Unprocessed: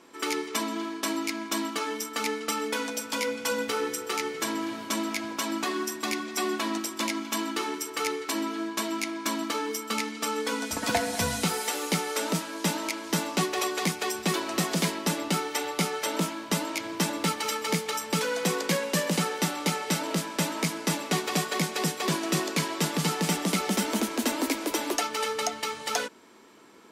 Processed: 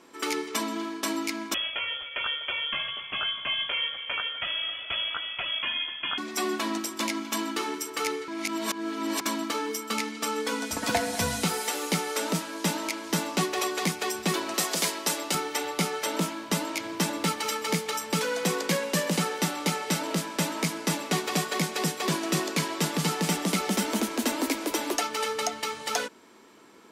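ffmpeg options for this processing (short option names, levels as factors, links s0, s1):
-filter_complex "[0:a]asettb=1/sr,asplit=3[s0][s1][s2];[s0]atrim=end=1.544[s3];[s1]atrim=start=1.54:end=6.18,asetpts=PTS-STARTPTS,afade=t=in:d=0.004:c=qsin,afade=t=out:st=4.636:d=0.004:c=qsin,lowpass=f=3100:t=q:w=0.5098,lowpass=f=3100:t=q:w=0.6013,lowpass=f=3100:t=q:w=0.9,lowpass=f=3100:t=q:w=2.563,afreqshift=-3600[s4];[s2]atrim=start=6.176[s5];[s3][s4]acrossfade=d=0.004:c1=hsin:c2=qsin[s6];[s6][s5]acrossfade=d=0.004:c1=qsin:c2=hsin,asettb=1/sr,asplit=3[s7][s8][s9];[s7]atrim=end=14.544[s10];[s8]atrim=start=14.54:end=15.35,asetpts=PTS-STARTPTS,afade=t=in:d=0.004:c=qsin,afade=t=out:st=0.806:d=0.004:c=qsin,bass=f=250:g=-15,treble=f=4000:g=5[s11];[s9]atrim=start=15.346[s12];[s10][s11]acrossfade=d=0.004:c1=hsin:c2=qsin[s13];[s13][s12]acrossfade=d=0.004:c1=qsin:c2=hsin,asplit=3[s14][s15][s16];[s14]atrim=end=8.282[s17];[s15]atrim=start=8.278:end=9.212,asetpts=PTS-STARTPTS,areverse[s18];[s16]atrim=start=9.208[s19];[s17][s18]acrossfade=d=0.004:c1=hsin:c2=hsin[s20];[s20][s19]acrossfade=d=0.004:c1=hsin:c2=hsin"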